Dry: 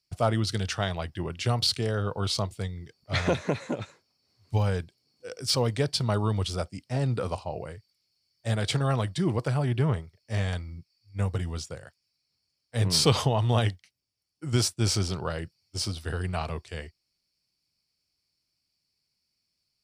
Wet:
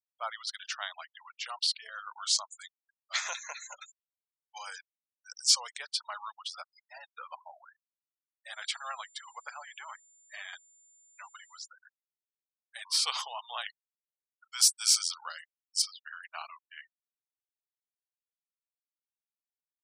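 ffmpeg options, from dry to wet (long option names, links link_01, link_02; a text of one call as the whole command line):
ffmpeg -i in.wav -filter_complex "[0:a]asettb=1/sr,asplit=3[link_01][link_02][link_03];[link_01]atrim=end=1.924[link_04];[link_02]atrim=start=1.92:end=5.77,asetpts=PTS-STARTPTS,afade=type=in:duration=0.004:curve=qsin,afade=type=out:start_time=3.846:duration=0.004:curve=qsin,equalizer=frequency=6800:width_type=o:width=0.77:gain=14.5[link_05];[link_03]atrim=start=5.766[link_06];[link_04][link_05]acrossfade=duration=0.004:curve1=hsin:curve2=qsin[link_07];[link_07][link_06]acrossfade=duration=0.004:curve1=qsin:curve2=hsin,asettb=1/sr,asplit=3[link_08][link_09][link_10];[link_08]atrim=end=8.534[link_11];[link_09]atrim=start=8.53:end=11.68,asetpts=PTS-STARTPTS,afade=type=in:duration=0.004:curve=qsin,afade=type=out:start_time=3.146:duration=0.004:curve=qsin,aeval=exprs='val(0)+0.002*sin(2*PI*7200*n/s)':channel_layout=same[link_12];[link_10]atrim=start=11.676[link_13];[link_11][link_12]acrossfade=duration=0.004:curve1=hsin:curve2=qsin[link_14];[link_14][link_13]acrossfade=duration=0.004:curve1=qsin:curve2=hsin,asettb=1/sr,asplit=3[link_15][link_16][link_17];[link_15]atrim=end=14.614[link_18];[link_16]atrim=start=14.61:end=15.82,asetpts=PTS-STARTPTS,afade=type=in:duration=0.004:curve=qsin,afade=type=out:start_time=1.206:duration=0.004:curve=qsin,bass=frequency=250:gain=13,treble=frequency=4000:gain=12[link_19];[link_17]atrim=start=15.816[link_20];[link_18][link_19]acrossfade=duration=0.004:curve1=hsin:curve2=qsin[link_21];[link_21][link_20]acrossfade=duration=0.004:curve1=qsin:curve2=hsin,highpass=frequency=960:width=0.5412,highpass=frequency=960:width=1.3066,afftfilt=real='re*gte(hypot(re,im),0.0141)':imag='im*gte(hypot(re,im),0.0141)':win_size=1024:overlap=0.75,volume=-3.5dB" out.wav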